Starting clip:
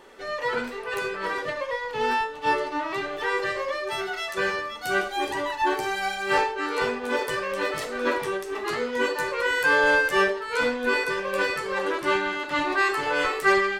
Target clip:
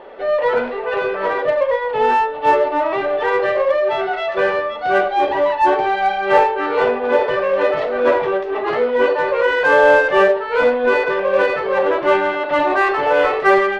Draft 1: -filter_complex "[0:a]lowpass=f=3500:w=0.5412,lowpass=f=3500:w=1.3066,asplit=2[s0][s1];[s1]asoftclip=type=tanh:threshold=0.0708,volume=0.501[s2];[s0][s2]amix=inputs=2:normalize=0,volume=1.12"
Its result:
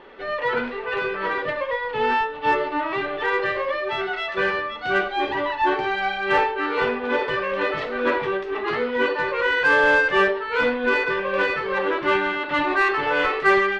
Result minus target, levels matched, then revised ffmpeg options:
500 Hz band -3.0 dB
-filter_complex "[0:a]lowpass=f=3500:w=0.5412,lowpass=f=3500:w=1.3066,equalizer=f=630:t=o:w=1.1:g=14,asplit=2[s0][s1];[s1]asoftclip=type=tanh:threshold=0.0708,volume=0.501[s2];[s0][s2]amix=inputs=2:normalize=0,volume=1.12"

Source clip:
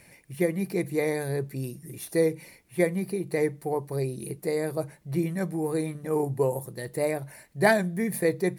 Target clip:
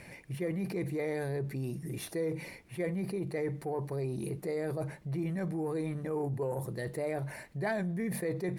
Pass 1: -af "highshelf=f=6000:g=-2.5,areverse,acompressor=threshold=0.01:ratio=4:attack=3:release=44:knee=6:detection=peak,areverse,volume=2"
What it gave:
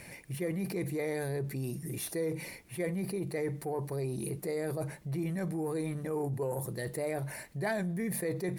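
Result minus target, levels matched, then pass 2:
8 kHz band +6.5 dB
-af "highshelf=f=6000:g=-13.5,areverse,acompressor=threshold=0.01:ratio=4:attack=3:release=44:knee=6:detection=peak,areverse,volume=2"

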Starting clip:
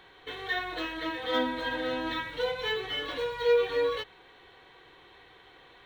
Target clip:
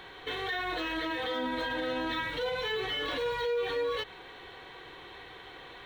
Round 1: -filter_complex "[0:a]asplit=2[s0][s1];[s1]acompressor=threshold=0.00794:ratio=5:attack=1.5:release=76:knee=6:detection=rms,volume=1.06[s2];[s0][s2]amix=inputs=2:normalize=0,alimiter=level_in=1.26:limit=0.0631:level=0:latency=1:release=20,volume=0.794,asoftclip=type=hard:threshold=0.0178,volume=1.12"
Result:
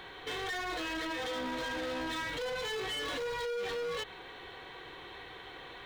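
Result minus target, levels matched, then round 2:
hard clipper: distortion +31 dB
-filter_complex "[0:a]asplit=2[s0][s1];[s1]acompressor=threshold=0.00794:ratio=5:attack=1.5:release=76:knee=6:detection=rms,volume=1.06[s2];[s0][s2]amix=inputs=2:normalize=0,alimiter=level_in=1.26:limit=0.0631:level=0:latency=1:release=20,volume=0.794,asoftclip=type=hard:threshold=0.0473,volume=1.12"

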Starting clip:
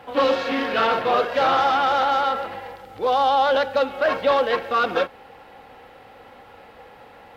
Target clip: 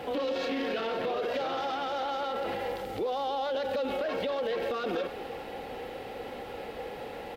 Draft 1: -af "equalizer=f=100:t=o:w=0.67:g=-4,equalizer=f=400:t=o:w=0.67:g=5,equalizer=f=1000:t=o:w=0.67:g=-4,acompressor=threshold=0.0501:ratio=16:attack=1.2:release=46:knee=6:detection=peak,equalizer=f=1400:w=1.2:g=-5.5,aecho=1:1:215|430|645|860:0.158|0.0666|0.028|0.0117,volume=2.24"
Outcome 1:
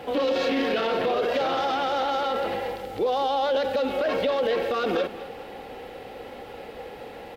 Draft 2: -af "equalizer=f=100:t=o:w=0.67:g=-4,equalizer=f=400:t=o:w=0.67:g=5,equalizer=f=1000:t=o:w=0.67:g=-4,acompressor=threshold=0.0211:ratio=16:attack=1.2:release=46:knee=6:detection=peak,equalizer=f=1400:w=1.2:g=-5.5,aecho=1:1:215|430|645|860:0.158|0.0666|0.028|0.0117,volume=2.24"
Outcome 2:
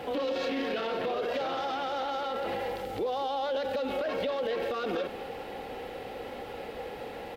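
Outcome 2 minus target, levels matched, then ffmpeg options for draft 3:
echo 73 ms early
-af "equalizer=f=100:t=o:w=0.67:g=-4,equalizer=f=400:t=o:w=0.67:g=5,equalizer=f=1000:t=o:w=0.67:g=-4,acompressor=threshold=0.0211:ratio=16:attack=1.2:release=46:knee=6:detection=peak,equalizer=f=1400:w=1.2:g=-5.5,aecho=1:1:288|576|864|1152:0.158|0.0666|0.028|0.0117,volume=2.24"

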